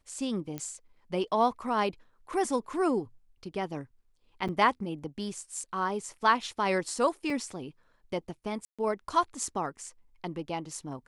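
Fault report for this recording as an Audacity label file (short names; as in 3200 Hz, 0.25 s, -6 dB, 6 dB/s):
0.580000	0.580000	pop -21 dBFS
4.480000	4.490000	gap 6.7 ms
7.300000	7.300000	gap 2.2 ms
8.650000	8.790000	gap 0.136 s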